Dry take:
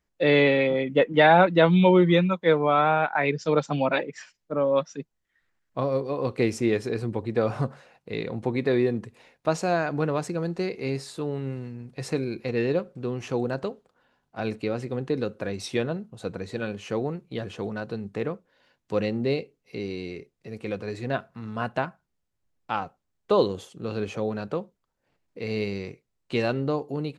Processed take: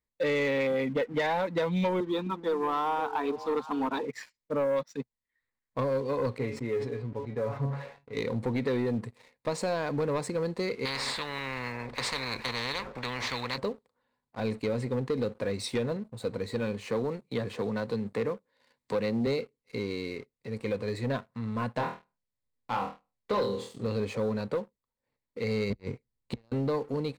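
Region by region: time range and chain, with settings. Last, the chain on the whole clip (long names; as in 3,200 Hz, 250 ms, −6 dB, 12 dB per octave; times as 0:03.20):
0:02.00–0:04.05: low-pass filter 3,600 Hz + phaser with its sweep stopped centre 560 Hz, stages 6 + echo through a band-pass that steps 259 ms, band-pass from 190 Hz, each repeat 1.4 octaves, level −9 dB
0:06.38–0:08.17: Bessel low-pass filter 2,000 Hz + tuned comb filter 140 Hz, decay 0.17 s, mix 90% + level that may fall only so fast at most 81 dB per second
0:10.85–0:13.58: low-pass filter 2,500 Hz + every bin compressed towards the loudest bin 10 to 1
0:16.87–0:19.27: low-shelf EQ 67 Hz −11.5 dB + multiband upward and downward compressor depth 40%
0:21.77–0:23.87: low-pass filter 7,900 Hz + flutter between parallel walls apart 4.3 metres, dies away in 0.34 s
0:25.70–0:26.52: low-shelf EQ 360 Hz +9.5 dB + gate with flip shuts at −15 dBFS, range −38 dB
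whole clip: EQ curve with evenly spaced ripples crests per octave 0.97, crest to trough 8 dB; downward compressor, threshold −22 dBFS; leveller curve on the samples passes 2; level −8 dB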